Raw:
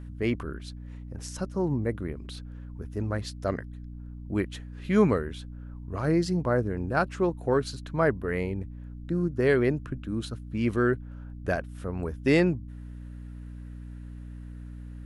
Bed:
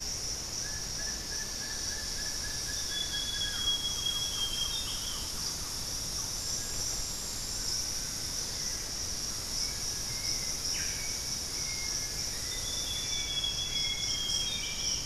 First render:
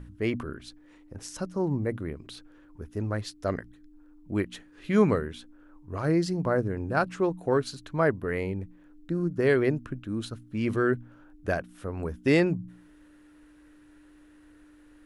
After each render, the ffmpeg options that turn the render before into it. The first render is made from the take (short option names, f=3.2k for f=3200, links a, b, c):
-af "bandreject=f=60:t=h:w=4,bandreject=f=120:t=h:w=4,bandreject=f=180:t=h:w=4,bandreject=f=240:t=h:w=4"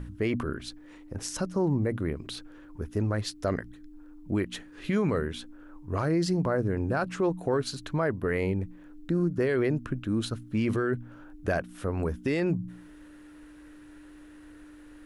-filter_complex "[0:a]asplit=2[a][b];[b]acompressor=threshold=-32dB:ratio=6,volume=-1dB[c];[a][c]amix=inputs=2:normalize=0,alimiter=limit=-18dB:level=0:latency=1:release=20"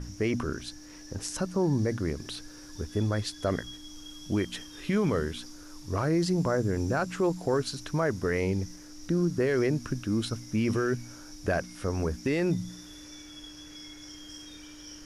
-filter_complex "[1:a]volume=-15.5dB[a];[0:a][a]amix=inputs=2:normalize=0"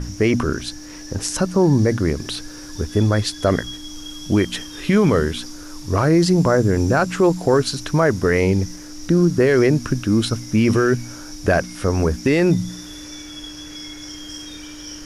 -af "volume=11dB"